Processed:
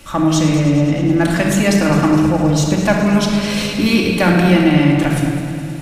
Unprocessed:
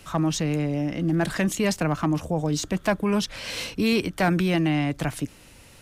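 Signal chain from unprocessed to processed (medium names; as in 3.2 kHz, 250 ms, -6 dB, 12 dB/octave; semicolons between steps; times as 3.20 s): band-stop 4.8 kHz, Q 20; multi-head delay 105 ms, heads first and second, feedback 64%, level -14 dB; simulated room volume 2600 m³, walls mixed, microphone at 2.4 m; trim +5.5 dB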